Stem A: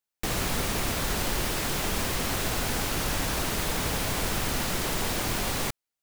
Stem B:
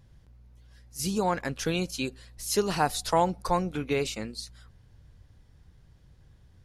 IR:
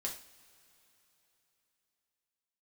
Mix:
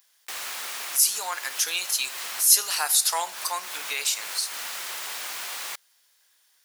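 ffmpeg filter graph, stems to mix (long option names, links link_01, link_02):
-filter_complex "[0:a]adelay=50,volume=-2dB[link_01];[1:a]aemphasis=mode=production:type=riaa,volume=-0.5dB,asplit=3[link_02][link_03][link_04];[link_03]volume=-7dB[link_05];[link_04]apad=whole_len=267924[link_06];[link_01][link_06]sidechaincompress=threshold=-33dB:ratio=5:attack=20:release=206[link_07];[2:a]atrim=start_sample=2205[link_08];[link_05][link_08]afir=irnorm=-1:irlink=0[link_09];[link_07][link_02][link_09]amix=inputs=3:normalize=0,highpass=1100"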